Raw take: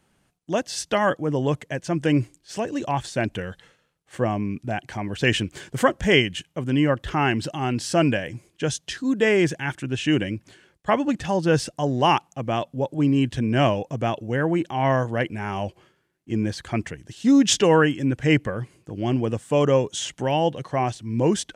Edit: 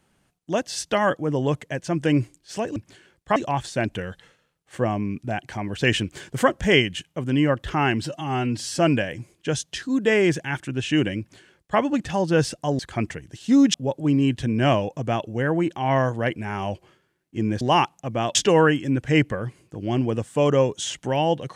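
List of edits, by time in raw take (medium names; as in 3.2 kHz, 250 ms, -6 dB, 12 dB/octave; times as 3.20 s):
7.44–7.94 s: stretch 1.5×
10.34–10.94 s: copy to 2.76 s
11.94–12.68 s: swap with 16.55–17.50 s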